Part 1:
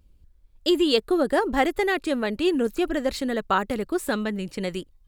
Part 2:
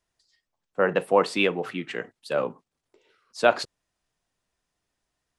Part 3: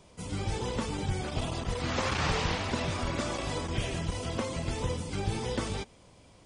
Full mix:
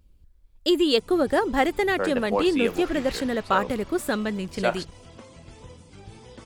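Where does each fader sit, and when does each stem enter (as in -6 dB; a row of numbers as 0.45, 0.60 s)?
0.0, -5.5, -13.0 dB; 0.00, 1.20, 0.80 s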